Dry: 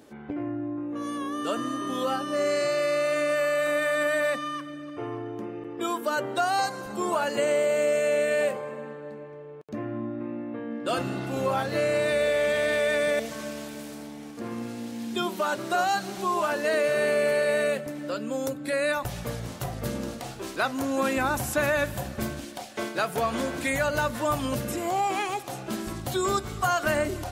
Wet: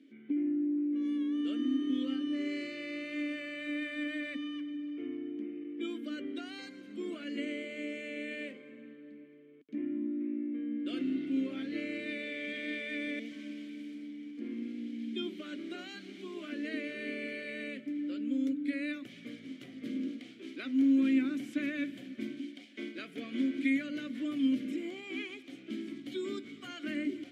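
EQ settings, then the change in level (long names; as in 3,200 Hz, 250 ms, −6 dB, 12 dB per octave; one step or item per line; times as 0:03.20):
formant filter i
dynamic equaliser 320 Hz, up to +4 dB, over −47 dBFS, Q 1.4
high-pass filter 190 Hz 12 dB per octave
+3.0 dB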